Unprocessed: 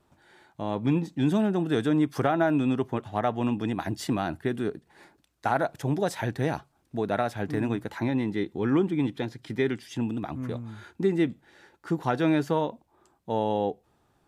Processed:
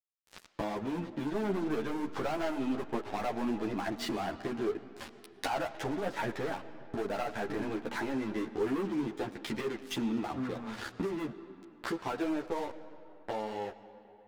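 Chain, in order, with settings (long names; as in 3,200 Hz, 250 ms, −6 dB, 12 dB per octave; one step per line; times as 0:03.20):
fade-out on the ending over 4.08 s
treble cut that deepens with the level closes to 2,200 Hz, closed at −25.5 dBFS
bass and treble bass −10 dB, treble −3 dB
mains-hum notches 50/100/150/200 Hz
leveller curve on the samples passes 5
downward compressor 6 to 1, threshold −40 dBFS, peak gain reduction 23.5 dB
dead-zone distortion −57.5 dBFS
convolution reverb RT60 3.0 s, pre-delay 60 ms, DRR 13.5 dB
string-ensemble chorus
level +8.5 dB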